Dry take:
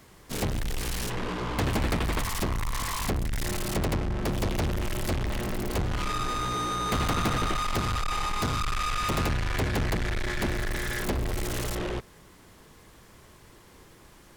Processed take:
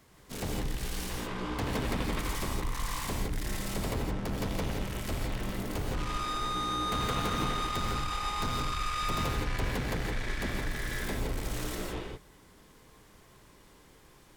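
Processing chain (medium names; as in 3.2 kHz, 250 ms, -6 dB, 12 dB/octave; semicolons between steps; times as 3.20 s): gated-style reverb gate 190 ms rising, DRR 0 dB; trim -7.5 dB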